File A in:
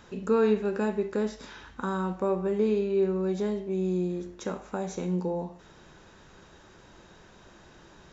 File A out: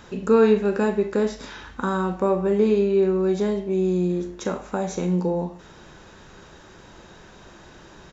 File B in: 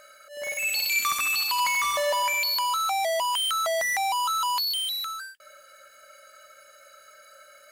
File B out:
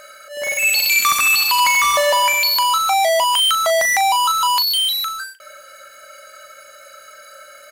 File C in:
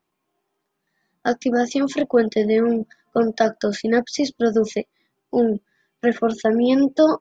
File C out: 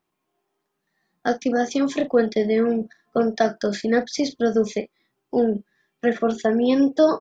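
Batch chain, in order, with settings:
doubler 40 ms -12.5 dB; normalise peaks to -6 dBFS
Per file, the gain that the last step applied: +6.5, +10.0, -1.5 dB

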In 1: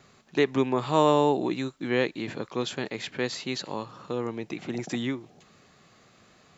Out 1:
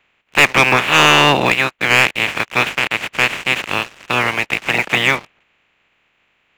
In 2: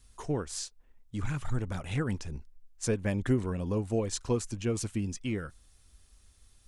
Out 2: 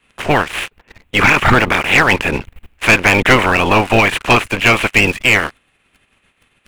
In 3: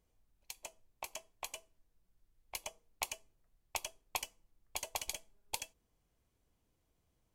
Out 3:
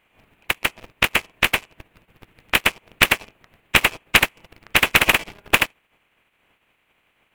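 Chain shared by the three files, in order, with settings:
spectral limiter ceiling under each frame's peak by 28 dB; resonant high shelf 3700 Hz -13 dB, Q 3; sample leveller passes 3; normalise peaks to -1.5 dBFS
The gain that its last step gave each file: +1.5, +8.0, +18.5 dB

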